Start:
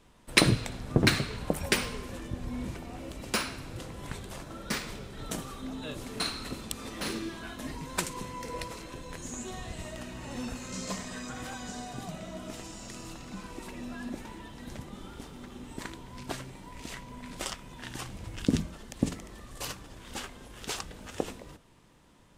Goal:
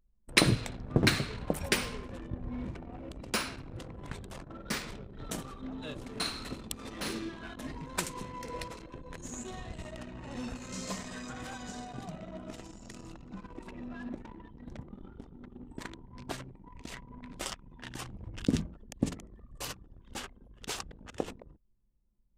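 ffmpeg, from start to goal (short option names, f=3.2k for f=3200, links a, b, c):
-af "anlmdn=0.158,volume=-2dB"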